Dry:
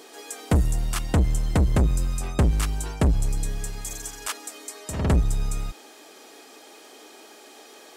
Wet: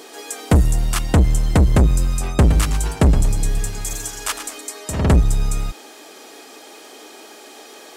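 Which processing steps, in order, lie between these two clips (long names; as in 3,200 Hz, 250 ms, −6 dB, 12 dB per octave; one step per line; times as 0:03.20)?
0:02.36–0:04.61: feedback echo with a swinging delay time 113 ms, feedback 35%, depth 175 cents, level −10 dB
level +6.5 dB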